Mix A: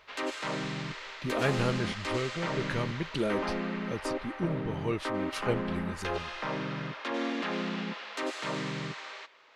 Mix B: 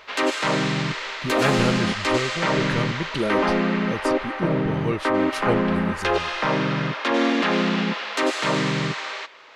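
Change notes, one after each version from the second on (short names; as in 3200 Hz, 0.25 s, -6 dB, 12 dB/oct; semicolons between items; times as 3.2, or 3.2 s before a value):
speech +5.5 dB; background +12.0 dB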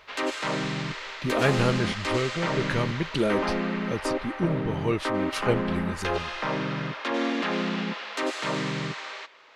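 background -6.5 dB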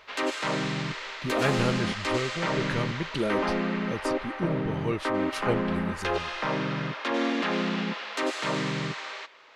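speech -3.5 dB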